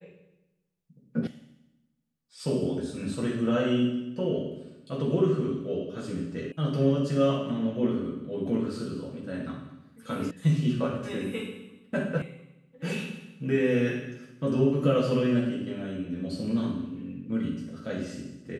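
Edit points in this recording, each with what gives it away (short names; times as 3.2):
1.27 sound cut off
6.52 sound cut off
10.31 sound cut off
12.22 sound cut off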